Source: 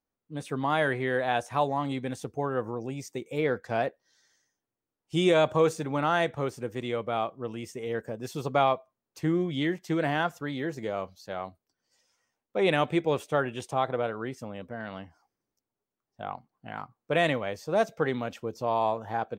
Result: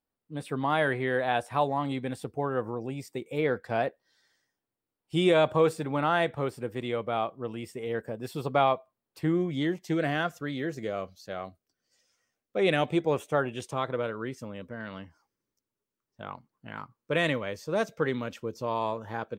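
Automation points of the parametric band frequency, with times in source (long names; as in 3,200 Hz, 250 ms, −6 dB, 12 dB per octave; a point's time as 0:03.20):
parametric band −14.5 dB 0.23 octaves
0:09.28 6,300 Hz
0:10.02 900 Hz
0:12.75 900 Hz
0:13.25 5,200 Hz
0:13.64 740 Hz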